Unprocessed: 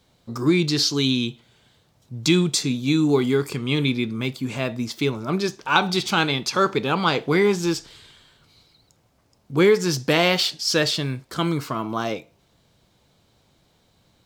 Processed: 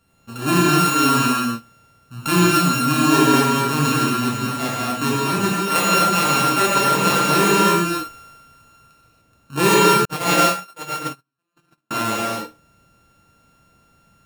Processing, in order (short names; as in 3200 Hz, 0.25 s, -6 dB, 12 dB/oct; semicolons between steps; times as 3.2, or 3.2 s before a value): sample sorter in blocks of 32 samples; non-linear reverb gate 0.32 s flat, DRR -6.5 dB; 10.05–11.91 gate -11 dBFS, range -57 dB; gain -3.5 dB